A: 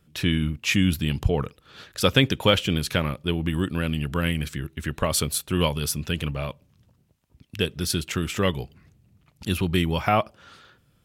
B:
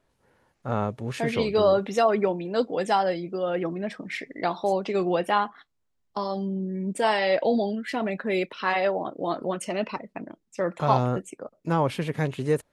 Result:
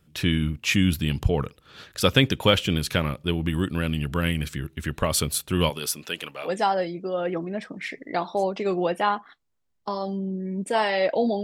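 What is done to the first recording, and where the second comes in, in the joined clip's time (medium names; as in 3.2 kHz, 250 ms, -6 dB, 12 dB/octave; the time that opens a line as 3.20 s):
A
5.69–6.50 s: high-pass 250 Hz -> 660 Hz
6.46 s: go over to B from 2.75 s, crossfade 0.08 s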